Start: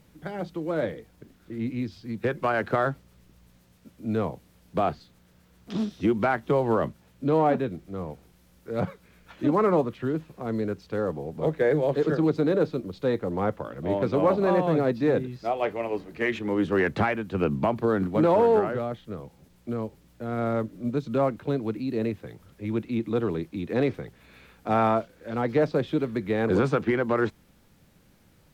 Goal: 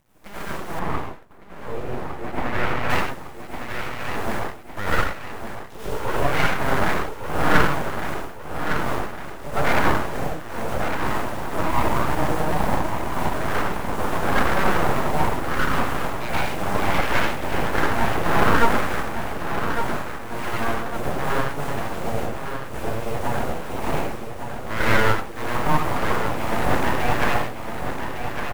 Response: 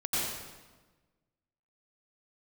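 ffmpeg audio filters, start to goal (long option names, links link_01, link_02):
-filter_complex "[0:a]acrusher=bits=7:dc=4:mix=0:aa=0.000001,equalizer=frequency=250:width_type=o:width=1:gain=-4,equalizer=frequency=1000:width_type=o:width=1:gain=7,equalizer=frequency=4000:width_type=o:width=1:gain=-7,aecho=1:1:1157|2314|3471|4628|5785:0.422|0.19|0.0854|0.0384|0.0173[link_01];[1:a]atrim=start_sample=2205,afade=type=out:start_time=0.31:duration=0.01,atrim=end_sample=14112[link_02];[link_01][link_02]afir=irnorm=-1:irlink=0,aeval=exprs='abs(val(0))':channel_layout=same,asettb=1/sr,asplit=3[link_03][link_04][link_05];[link_03]atrim=end=0.794[link_06];[link_04]atrim=start=0.79:end=2.9,asetpts=PTS-STARTPTS,afade=type=in:duration=0.004:curve=qsin,afade=type=out:start_time=2.106:duration=0.004:curve=qsin,highshelf=frequency=3500:gain=-12[link_07];[link_05]atrim=start=2.896[link_08];[link_06][link_07]acrossfade=duration=0.004:curve1=hsin:curve2=qsin[link_09];[link_09][link_08]acrossfade=duration=0.004:curve1=qsin:curve2=hsin,volume=-3.5dB"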